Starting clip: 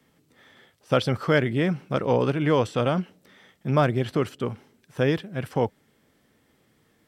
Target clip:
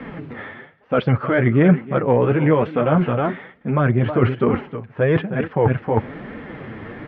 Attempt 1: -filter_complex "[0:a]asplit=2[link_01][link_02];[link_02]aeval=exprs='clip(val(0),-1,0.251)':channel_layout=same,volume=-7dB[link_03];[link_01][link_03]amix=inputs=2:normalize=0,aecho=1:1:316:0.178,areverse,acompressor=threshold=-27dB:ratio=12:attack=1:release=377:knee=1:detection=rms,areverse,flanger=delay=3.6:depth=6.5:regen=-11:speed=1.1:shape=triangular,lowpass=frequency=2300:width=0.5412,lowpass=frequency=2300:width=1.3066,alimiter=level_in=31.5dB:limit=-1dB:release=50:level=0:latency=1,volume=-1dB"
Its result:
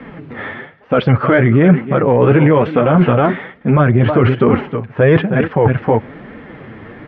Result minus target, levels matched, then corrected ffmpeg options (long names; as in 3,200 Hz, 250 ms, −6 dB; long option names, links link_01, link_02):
downward compressor: peak gain reduction −9 dB
-filter_complex "[0:a]asplit=2[link_01][link_02];[link_02]aeval=exprs='clip(val(0),-1,0.251)':channel_layout=same,volume=-7dB[link_03];[link_01][link_03]amix=inputs=2:normalize=0,aecho=1:1:316:0.178,areverse,acompressor=threshold=-37dB:ratio=12:attack=1:release=377:knee=1:detection=rms,areverse,flanger=delay=3.6:depth=6.5:regen=-11:speed=1.1:shape=triangular,lowpass=frequency=2300:width=0.5412,lowpass=frequency=2300:width=1.3066,alimiter=level_in=31.5dB:limit=-1dB:release=50:level=0:latency=1,volume=-1dB"